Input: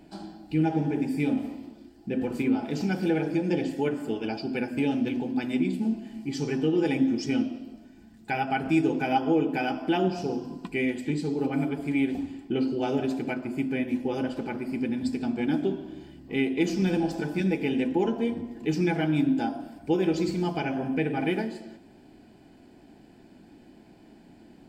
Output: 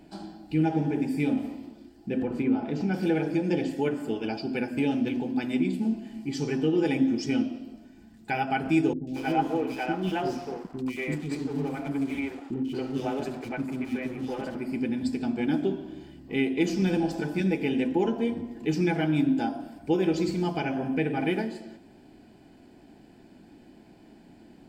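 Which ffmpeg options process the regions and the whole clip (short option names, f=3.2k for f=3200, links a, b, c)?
-filter_complex "[0:a]asettb=1/sr,asplit=3[a][b][c];[a]atrim=end=2.224[d];[b]atrim=start=2.22:end=2.94,asetpts=PTS-STARTPTS,afade=t=in:d=0.004:c=qsin,afade=t=out:st=0.716:d=0.004:c=qsin,lowpass=f=1.8k:p=1,acompressor=mode=upward:threshold=-27dB:ratio=2.5:attack=3.2:release=140:knee=2.83:detection=peak[e];[c]atrim=start=2.936[f];[d][e]acrossfade=d=0.004:c1=hsin:c2=qsin[g];[g][f]acrossfade=d=0.004:c1=qsin:c2=hsin,asettb=1/sr,asplit=3[h][i][j];[h]atrim=end=8.934[k];[i]atrim=start=8.93:end=14.55,asetpts=PTS-STARTPTS,afade=t=in:d=0.004:c=qsin,afade=t=out:st=5.616:d=0.004:c=qsin,aeval=exprs='sgn(val(0))*max(abs(val(0))-0.00668,0)':c=same,acrossover=split=350|2900[l][m][n];[n]adelay=140[o];[m]adelay=230[p];[l][p][o]amix=inputs=3:normalize=0,atrim=end_sample=247842[q];[j]atrim=start=14.546[r];[k][q]acrossfade=d=0.004:c1=hsin:c2=qsin[s];[s][r]acrossfade=d=0.004:c1=qsin:c2=hsin"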